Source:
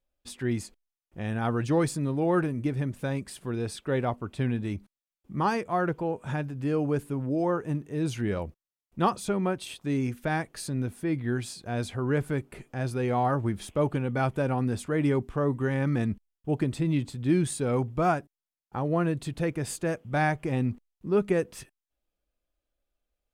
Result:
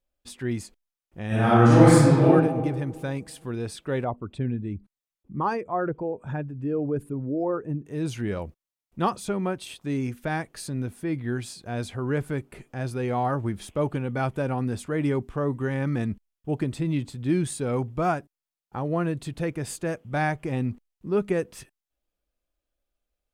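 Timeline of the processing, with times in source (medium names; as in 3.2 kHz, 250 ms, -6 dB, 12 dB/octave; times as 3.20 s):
1.27–2.25 s: reverb throw, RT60 1.6 s, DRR -11 dB
4.04–7.86 s: resonances exaggerated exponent 1.5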